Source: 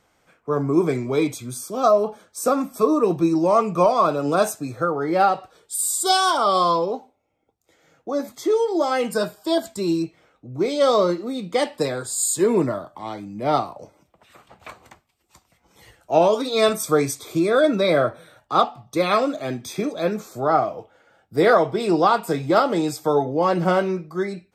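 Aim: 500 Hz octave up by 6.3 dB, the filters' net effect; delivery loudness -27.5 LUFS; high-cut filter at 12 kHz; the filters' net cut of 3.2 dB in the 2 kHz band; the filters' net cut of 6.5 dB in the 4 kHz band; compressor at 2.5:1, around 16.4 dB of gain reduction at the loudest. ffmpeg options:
-af "lowpass=12000,equalizer=f=500:t=o:g=8,equalizer=f=2000:t=o:g=-4,equalizer=f=4000:t=o:g=-7,acompressor=threshold=0.0224:ratio=2.5,volume=1.41"

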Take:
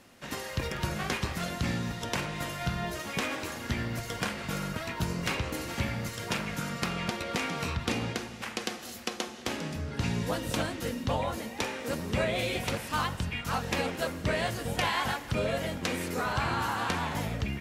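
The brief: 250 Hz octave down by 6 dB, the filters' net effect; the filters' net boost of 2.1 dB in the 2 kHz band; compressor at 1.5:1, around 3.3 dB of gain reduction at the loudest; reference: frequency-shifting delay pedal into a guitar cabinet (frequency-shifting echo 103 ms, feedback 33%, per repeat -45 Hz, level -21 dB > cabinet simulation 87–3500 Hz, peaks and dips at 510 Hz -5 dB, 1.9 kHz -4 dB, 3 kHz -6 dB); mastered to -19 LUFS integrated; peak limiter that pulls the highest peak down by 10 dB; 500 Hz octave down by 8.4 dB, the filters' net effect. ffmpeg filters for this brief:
-filter_complex "[0:a]equalizer=f=250:t=o:g=-6.5,equalizer=f=500:t=o:g=-7,equalizer=f=2000:t=o:g=6.5,acompressor=threshold=0.0178:ratio=1.5,alimiter=level_in=1.12:limit=0.0631:level=0:latency=1,volume=0.891,asplit=3[s0][s1][s2];[s1]adelay=103,afreqshift=-45,volume=0.0891[s3];[s2]adelay=206,afreqshift=-90,volume=0.0295[s4];[s0][s3][s4]amix=inputs=3:normalize=0,highpass=87,equalizer=f=510:t=q:w=4:g=-5,equalizer=f=1900:t=q:w=4:g=-4,equalizer=f=3000:t=q:w=4:g=-6,lowpass=f=3500:w=0.5412,lowpass=f=3500:w=1.3066,volume=8.91"

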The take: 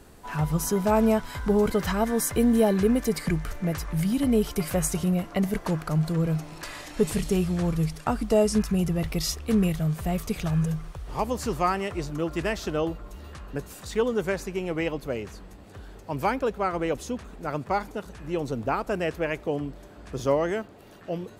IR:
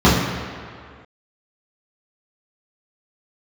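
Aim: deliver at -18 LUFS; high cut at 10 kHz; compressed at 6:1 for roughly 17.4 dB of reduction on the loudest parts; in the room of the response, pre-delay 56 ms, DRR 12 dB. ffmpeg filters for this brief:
-filter_complex "[0:a]lowpass=10000,acompressor=threshold=0.0141:ratio=6,asplit=2[s0][s1];[1:a]atrim=start_sample=2205,adelay=56[s2];[s1][s2]afir=irnorm=-1:irlink=0,volume=0.0112[s3];[s0][s3]amix=inputs=2:normalize=0,volume=11.2"

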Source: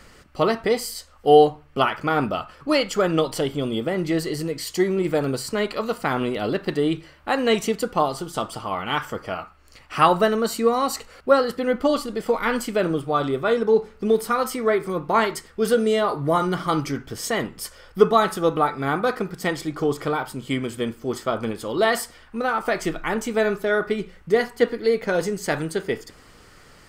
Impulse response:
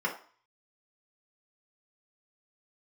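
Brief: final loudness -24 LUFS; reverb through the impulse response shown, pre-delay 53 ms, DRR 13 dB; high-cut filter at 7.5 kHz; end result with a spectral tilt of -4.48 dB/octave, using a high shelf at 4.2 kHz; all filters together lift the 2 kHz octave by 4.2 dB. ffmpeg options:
-filter_complex "[0:a]lowpass=7500,equalizer=f=2000:t=o:g=4.5,highshelf=f=4200:g=5,asplit=2[s0][s1];[1:a]atrim=start_sample=2205,adelay=53[s2];[s1][s2]afir=irnorm=-1:irlink=0,volume=0.0841[s3];[s0][s3]amix=inputs=2:normalize=0,volume=0.794"

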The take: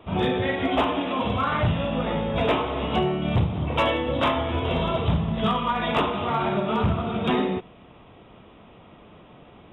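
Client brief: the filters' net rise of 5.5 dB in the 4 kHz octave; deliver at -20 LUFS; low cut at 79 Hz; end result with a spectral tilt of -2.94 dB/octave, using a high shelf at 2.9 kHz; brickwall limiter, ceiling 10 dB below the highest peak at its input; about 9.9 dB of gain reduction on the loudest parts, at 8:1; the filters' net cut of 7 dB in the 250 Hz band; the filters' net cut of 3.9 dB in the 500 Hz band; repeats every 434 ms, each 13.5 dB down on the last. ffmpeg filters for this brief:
-af "highpass=79,equalizer=f=250:t=o:g=-9,equalizer=f=500:t=o:g=-3,highshelf=f=2900:g=6,equalizer=f=4000:t=o:g=3,acompressor=threshold=0.0355:ratio=8,alimiter=level_in=1.58:limit=0.0631:level=0:latency=1,volume=0.631,aecho=1:1:434|868:0.211|0.0444,volume=6.31"

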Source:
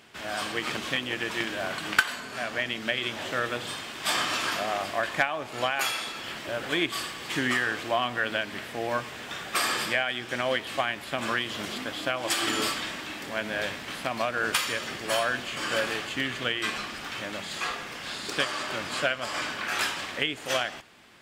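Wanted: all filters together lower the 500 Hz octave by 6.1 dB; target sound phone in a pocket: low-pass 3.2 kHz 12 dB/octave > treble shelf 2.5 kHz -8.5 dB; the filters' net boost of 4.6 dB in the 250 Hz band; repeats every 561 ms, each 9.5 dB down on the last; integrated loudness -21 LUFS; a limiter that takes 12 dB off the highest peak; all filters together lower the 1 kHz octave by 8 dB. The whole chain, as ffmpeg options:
-af "equalizer=f=250:t=o:g=8.5,equalizer=f=500:t=o:g=-7.5,equalizer=f=1000:t=o:g=-7.5,alimiter=limit=0.1:level=0:latency=1,lowpass=3200,highshelf=f=2500:g=-8.5,aecho=1:1:561|1122|1683|2244:0.335|0.111|0.0365|0.012,volume=5.01"

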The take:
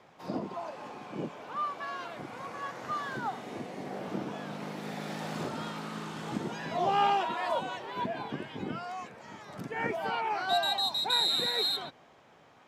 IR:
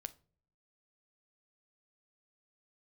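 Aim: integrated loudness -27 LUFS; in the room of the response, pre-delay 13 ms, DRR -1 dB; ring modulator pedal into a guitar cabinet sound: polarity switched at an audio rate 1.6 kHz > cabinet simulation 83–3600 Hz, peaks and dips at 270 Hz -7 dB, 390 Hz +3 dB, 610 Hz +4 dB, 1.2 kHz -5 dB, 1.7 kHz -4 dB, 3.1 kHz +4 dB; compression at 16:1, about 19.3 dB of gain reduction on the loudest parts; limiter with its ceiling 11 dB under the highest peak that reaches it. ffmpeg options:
-filter_complex "[0:a]acompressor=threshold=0.00794:ratio=16,alimiter=level_in=9.44:limit=0.0631:level=0:latency=1,volume=0.106,asplit=2[s0][s1];[1:a]atrim=start_sample=2205,adelay=13[s2];[s1][s2]afir=irnorm=-1:irlink=0,volume=1.78[s3];[s0][s3]amix=inputs=2:normalize=0,aeval=exprs='val(0)*sgn(sin(2*PI*1600*n/s))':c=same,highpass=83,equalizer=f=270:t=q:w=4:g=-7,equalizer=f=390:t=q:w=4:g=3,equalizer=f=610:t=q:w=4:g=4,equalizer=f=1200:t=q:w=4:g=-5,equalizer=f=1700:t=q:w=4:g=-4,equalizer=f=3100:t=q:w=4:g=4,lowpass=f=3600:w=0.5412,lowpass=f=3600:w=1.3066,volume=11.2"

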